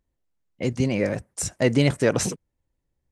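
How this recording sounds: noise floor -79 dBFS; spectral tilt -5.0 dB/oct

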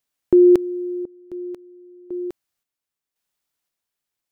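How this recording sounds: random-step tremolo 1.9 Hz, depth 90%

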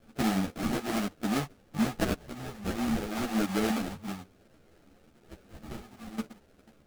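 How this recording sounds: a quantiser's noise floor 10-bit, dither triangular; phasing stages 4, 0.33 Hz, lowest notch 310–1400 Hz; aliases and images of a low sample rate 1000 Hz, jitter 20%; a shimmering, thickened sound

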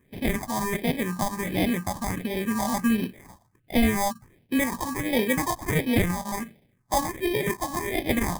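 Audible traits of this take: aliases and images of a low sample rate 1400 Hz, jitter 0%; phasing stages 4, 1.4 Hz, lowest notch 400–1200 Hz

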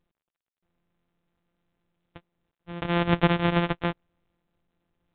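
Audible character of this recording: a buzz of ramps at a fixed pitch in blocks of 256 samples; random-step tremolo 1.6 Hz, depth 55%; µ-law

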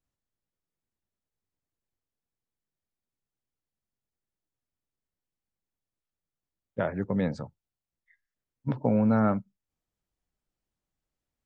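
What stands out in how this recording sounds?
noise floor -91 dBFS; spectral tilt -6.5 dB/oct

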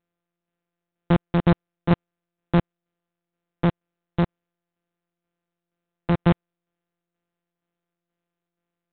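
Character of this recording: a buzz of ramps at a fixed pitch in blocks of 256 samples; tremolo saw down 2.1 Hz, depth 45%; IMA ADPCM

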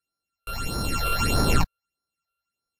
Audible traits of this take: a buzz of ramps at a fixed pitch in blocks of 32 samples; phasing stages 8, 1.6 Hz, lowest notch 240–2700 Hz; Vorbis

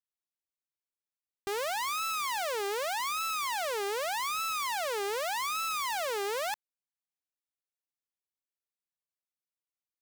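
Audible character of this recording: noise floor -96 dBFS; spectral tilt -0.5 dB/oct

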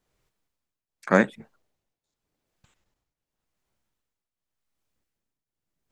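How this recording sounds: tremolo triangle 0.87 Hz, depth 85%

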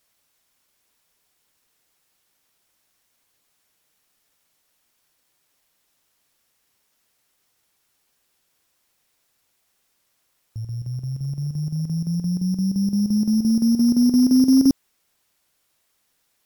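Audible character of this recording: a buzz of ramps at a fixed pitch in blocks of 8 samples; chopped level 5.8 Hz, depth 65%, duty 75%; a quantiser's noise floor 12-bit, dither triangular; AAC

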